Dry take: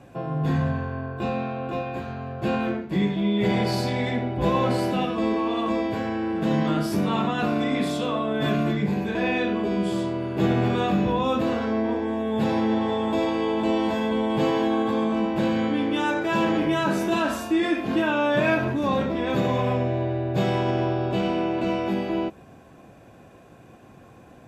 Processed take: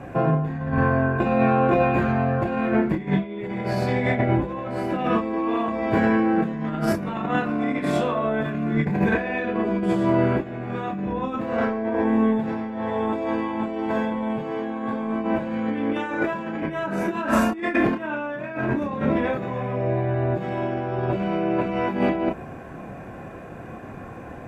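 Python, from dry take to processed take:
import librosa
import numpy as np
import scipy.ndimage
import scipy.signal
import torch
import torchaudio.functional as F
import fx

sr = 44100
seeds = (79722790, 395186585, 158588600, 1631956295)

y = fx.high_shelf_res(x, sr, hz=2700.0, db=-8.5, q=1.5)
y = fx.over_compress(y, sr, threshold_db=-28.0, ratio=-0.5)
y = fx.chorus_voices(y, sr, voices=6, hz=0.21, base_ms=29, depth_ms=3.1, mix_pct=35)
y = F.gain(torch.from_numpy(y), 8.5).numpy()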